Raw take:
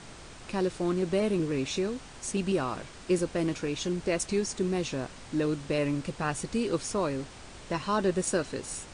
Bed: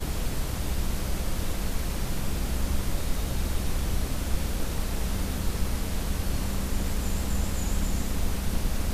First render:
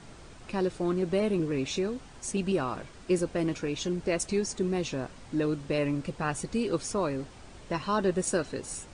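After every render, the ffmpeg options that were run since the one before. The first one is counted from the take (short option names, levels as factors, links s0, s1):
-af "afftdn=nr=6:nf=-47"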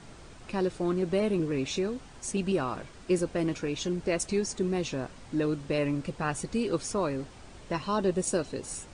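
-filter_complex "[0:a]asettb=1/sr,asplit=3[s0][s1][s2];[s0]atrim=end=7.804[s3];[s1]atrim=start=7.8:end=8.62,asetpts=PTS-STARTPTS,afade=t=in:d=0.004:c=qsin,afade=t=out:st=0.816:d=0.004:c=qsin,equalizer=f=1600:t=o:w=0.77:g=-5.5[s4];[s2]atrim=start=8.616[s5];[s3][s4]acrossfade=d=0.004:c1=hsin:c2=qsin[s6];[s6][s5]acrossfade=d=0.004:c1=qsin:c2=hsin"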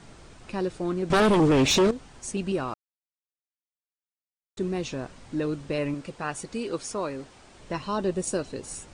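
-filter_complex "[0:a]asettb=1/sr,asplit=3[s0][s1][s2];[s0]atrim=end=1.104[s3];[s1]atrim=start=1.1:end=1.91,asetpts=PTS-STARTPTS,afade=t=in:d=0.004:c=qsin,afade=t=out:st=0.806:d=0.004:c=qsin,aeval=exprs='0.158*sin(PI/2*3.16*val(0)/0.158)':c=same[s4];[s2]atrim=start=1.906[s5];[s3][s4]acrossfade=d=0.004:c1=hsin:c2=qsin[s6];[s6][s5]acrossfade=d=0.004:c1=qsin:c2=hsin,asettb=1/sr,asplit=3[s7][s8][s9];[s7]atrim=end=5.944[s10];[s8]atrim=start=5.94:end=7.6,asetpts=PTS-STARTPTS,afade=t=in:d=0.004:c=qsin,afade=t=out:st=1.656:d=0.004:c=qsin,lowshelf=f=180:g=-9.5[s11];[s9]atrim=start=7.596[s12];[s10][s11]acrossfade=d=0.004:c1=hsin:c2=qsin[s13];[s13][s12]acrossfade=d=0.004:c1=qsin:c2=hsin,asplit=3[s14][s15][s16];[s14]atrim=end=2.74,asetpts=PTS-STARTPTS,afade=t=out:st=2.736:d=0.004:c=hsin[s17];[s15]atrim=start=2.74:end=4.57,asetpts=PTS-STARTPTS,volume=0[s18];[s16]atrim=start=4.57,asetpts=PTS-STARTPTS,afade=t=in:d=0.004:c=hsin[s19];[s17][s18][s19]concat=n=3:v=0:a=1"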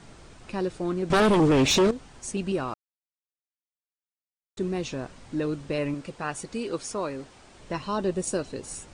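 -af anull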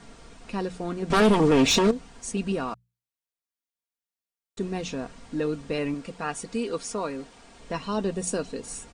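-af "bandreject=f=60:t=h:w=6,bandreject=f=120:t=h:w=6,bandreject=f=180:t=h:w=6,aecho=1:1:4.3:0.48"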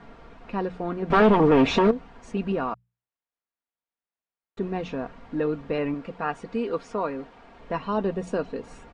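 -af "lowpass=2500,equalizer=f=860:w=0.67:g=4"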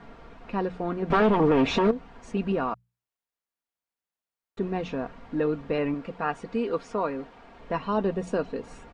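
-af "alimiter=limit=0.224:level=0:latency=1:release=268"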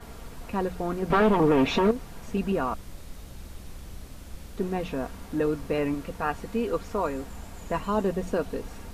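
-filter_complex "[1:a]volume=0.2[s0];[0:a][s0]amix=inputs=2:normalize=0"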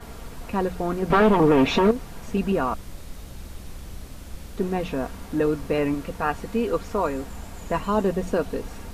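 -af "volume=1.5"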